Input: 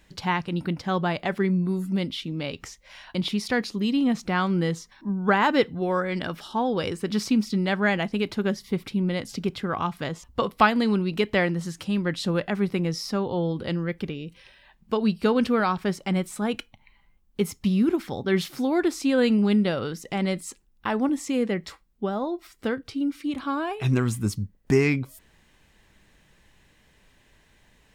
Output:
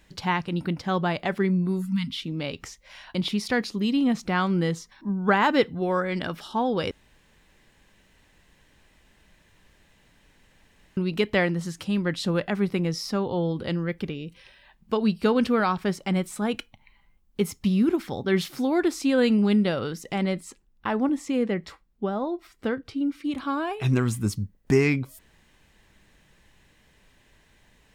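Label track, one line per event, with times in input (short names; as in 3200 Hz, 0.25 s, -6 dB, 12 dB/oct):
1.820000	2.150000	spectral delete 260–890 Hz
6.910000	10.970000	room tone
20.230000	23.250000	high shelf 4100 Hz -7.5 dB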